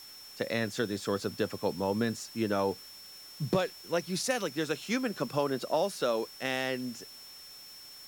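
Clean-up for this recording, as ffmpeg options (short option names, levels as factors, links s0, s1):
-af "adeclick=t=4,bandreject=f=5400:w=30,afftdn=nr=28:nf=-49"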